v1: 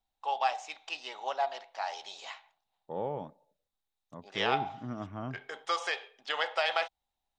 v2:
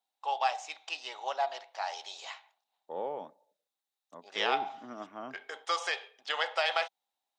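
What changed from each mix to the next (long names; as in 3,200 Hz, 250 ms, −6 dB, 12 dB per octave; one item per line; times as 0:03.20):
second voice: add high-pass filter 170 Hz 24 dB per octave
master: add bass and treble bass −14 dB, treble +3 dB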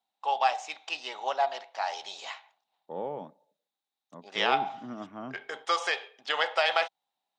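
first voice +4.0 dB
master: add bass and treble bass +14 dB, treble −3 dB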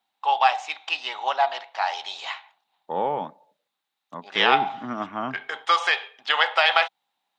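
second voice +7.0 dB
master: add flat-topped bell 1,800 Hz +8 dB 2.7 octaves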